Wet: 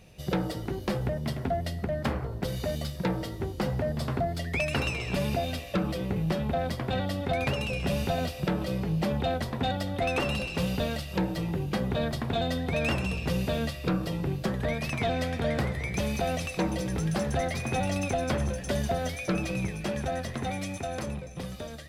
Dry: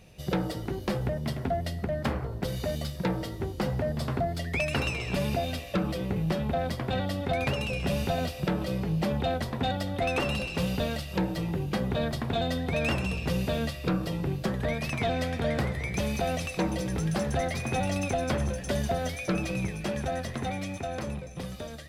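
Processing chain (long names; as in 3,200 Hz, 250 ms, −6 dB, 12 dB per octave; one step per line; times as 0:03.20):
0:20.49–0:21.06: parametric band 9,800 Hz +5.5 dB 1.5 octaves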